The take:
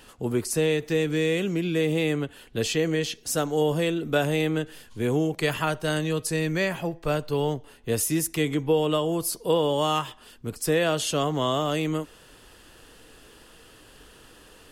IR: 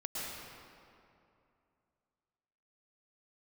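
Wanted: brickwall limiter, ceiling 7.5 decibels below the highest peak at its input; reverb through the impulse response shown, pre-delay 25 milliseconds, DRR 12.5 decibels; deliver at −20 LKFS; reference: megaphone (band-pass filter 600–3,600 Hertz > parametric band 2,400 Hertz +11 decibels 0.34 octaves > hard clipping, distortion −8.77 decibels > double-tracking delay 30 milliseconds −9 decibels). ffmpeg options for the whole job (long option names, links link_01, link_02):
-filter_complex "[0:a]alimiter=limit=-17dB:level=0:latency=1,asplit=2[link_01][link_02];[1:a]atrim=start_sample=2205,adelay=25[link_03];[link_02][link_03]afir=irnorm=-1:irlink=0,volume=-15.5dB[link_04];[link_01][link_04]amix=inputs=2:normalize=0,highpass=600,lowpass=3600,equalizer=frequency=2400:width_type=o:width=0.34:gain=11,asoftclip=type=hard:threshold=-29dB,asplit=2[link_05][link_06];[link_06]adelay=30,volume=-9dB[link_07];[link_05][link_07]amix=inputs=2:normalize=0,volume=12.5dB"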